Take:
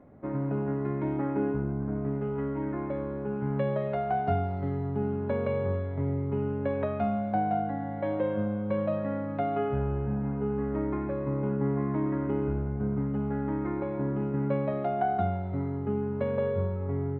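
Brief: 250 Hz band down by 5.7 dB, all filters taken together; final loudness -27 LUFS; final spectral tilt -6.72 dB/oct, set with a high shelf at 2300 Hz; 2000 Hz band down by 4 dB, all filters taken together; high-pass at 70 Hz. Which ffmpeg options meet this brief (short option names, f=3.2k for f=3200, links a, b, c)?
-af "highpass=70,equalizer=f=250:t=o:g=-7.5,equalizer=f=2k:t=o:g=-4,highshelf=f=2.3k:g=-3,volume=6dB"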